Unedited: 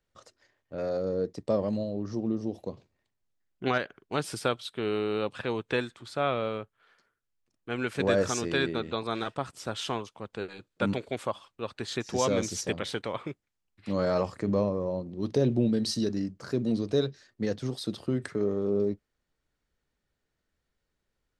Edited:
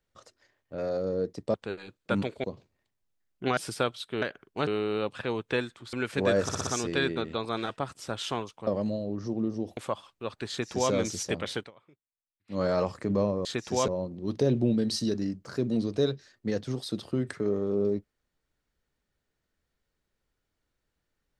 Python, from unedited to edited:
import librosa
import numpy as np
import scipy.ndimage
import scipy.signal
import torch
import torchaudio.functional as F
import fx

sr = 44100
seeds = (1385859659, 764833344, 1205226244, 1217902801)

y = fx.edit(x, sr, fx.swap(start_s=1.54, length_s=1.1, other_s=10.25, other_length_s=0.9),
    fx.move(start_s=3.77, length_s=0.45, to_s=4.87),
    fx.cut(start_s=6.13, length_s=1.62),
    fx.stutter(start_s=8.25, slice_s=0.06, count=5),
    fx.duplicate(start_s=11.87, length_s=0.43, to_s=14.83),
    fx.fade_down_up(start_s=12.96, length_s=1.02, db=-23.5, fade_s=0.13), tone=tone)